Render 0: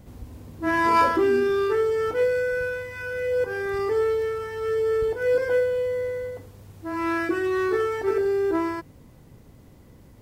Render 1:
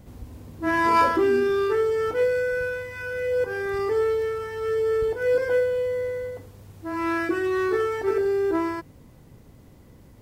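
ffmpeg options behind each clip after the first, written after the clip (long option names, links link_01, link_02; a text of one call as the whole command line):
ffmpeg -i in.wav -af anull out.wav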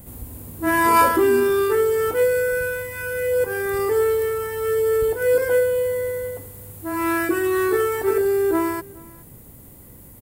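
ffmpeg -i in.wav -af "aexciter=amount=5.5:drive=7.7:freq=7900,aecho=1:1:420:0.0668,volume=3.5dB" out.wav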